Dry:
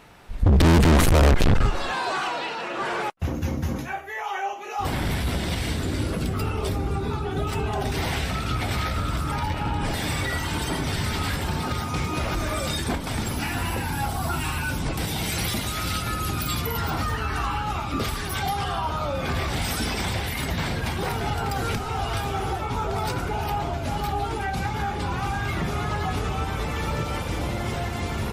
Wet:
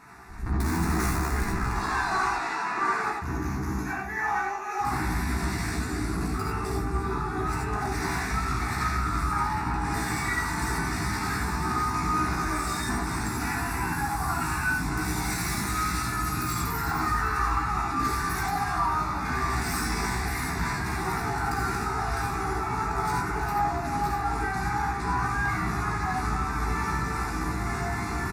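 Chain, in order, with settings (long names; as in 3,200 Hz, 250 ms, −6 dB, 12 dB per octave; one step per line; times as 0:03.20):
stylus tracing distortion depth 0.05 ms
high-pass filter 46 Hz 6 dB per octave
high-shelf EQ 12,000 Hz −10.5 dB
multi-tap delay 294/605 ms −15/−17 dB
soft clipping −25 dBFS, distortion −8 dB
low-shelf EQ 150 Hz −8.5 dB
phaser with its sweep stopped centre 1,300 Hz, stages 4
double-tracking delay 16 ms −5 dB
reverb whose tail is shaped and stops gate 110 ms rising, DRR −1 dB
level +2 dB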